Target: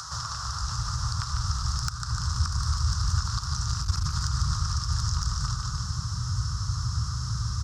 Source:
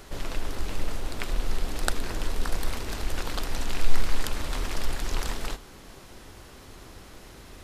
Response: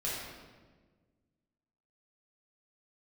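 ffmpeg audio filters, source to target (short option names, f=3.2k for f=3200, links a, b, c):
-filter_complex "[0:a]firequalizer=gain_entry='entry(150,0);entry(240,-28);entry(380,-27);entry(1200,13);entry(2200,-21);entry(5300,15);entry(12000,-17)':delay=0.05:min_phase=1,acrossover=split=540|800[a][b][c];[c]acompressor=mode=upward:threshold=-44dB:ratio=2.5[d];[a][b][d]amix=inputs=3:normalize=0,aecho=1:1:149|298|447|596|745:0.447|0.201|0.0905|0.0407|0.0183,asplit=2[e][f];[1:a]atrim=start_sample=2205,atrim=end_sample=6615,asetrate=33516,aresample=44100[g];[f][g]afir=irnorm=-1:irlink=0,volume=-14dB[h];[e][h]amix=inputs=2:normalize=0,aeval=exprs='1.19*sin(PI/2*2*val(0)/1.19)':c=same,highpass=f=69:w=0.5412,highpass=f=69:w=1.3066,acompressor=threshold=-25dB:ratio=12,asubboost=boost=11:cutoff=210,volume=-5dB"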